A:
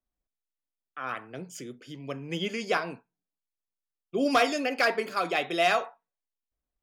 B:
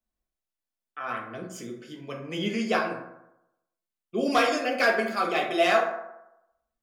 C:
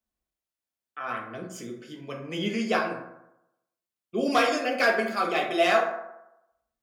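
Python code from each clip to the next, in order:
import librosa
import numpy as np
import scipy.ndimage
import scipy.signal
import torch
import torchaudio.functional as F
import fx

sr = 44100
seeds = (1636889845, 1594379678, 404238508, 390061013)

y1 = fx.rev_fdn(x, sr, rt60_s=0.87, lf_ratio=0.9, hf_ratio=0.45, size_ms=27.0, drr_db=-0.5)
y1 = y1 * librosa.db_to_amplitude(-1.5)
y2 = scipy.signal.sosfilt(scipy.signal.butter(2, 40.0, 'highpass', fs=sr, output='sos'), y1)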